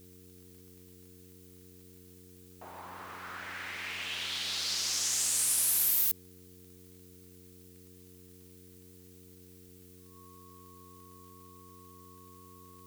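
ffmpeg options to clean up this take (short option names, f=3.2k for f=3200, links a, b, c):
-af "adeclick=t=4,bandreject=f=90.7:t=h:w=4,bandreject=f=181.4:t=h:w=4,bandreject=f=272.1:t=h:w=4,bandreject=f=362.8:t=h:w=4,bandreject=f=453.5:t=h:w=4,bandreject=f=1.1k:w=30,afftdn=nr=24:nf=-55"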